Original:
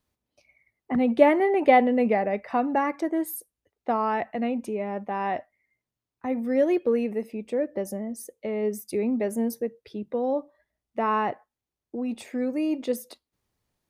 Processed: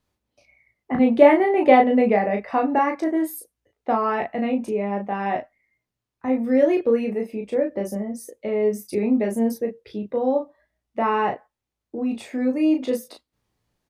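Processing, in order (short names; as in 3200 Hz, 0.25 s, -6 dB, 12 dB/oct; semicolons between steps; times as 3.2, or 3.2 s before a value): high shelf 8200 Hz -7 dB; early reflections 19 ms -8 dB, 35 ms -4.5 dB; gain +2.5 dB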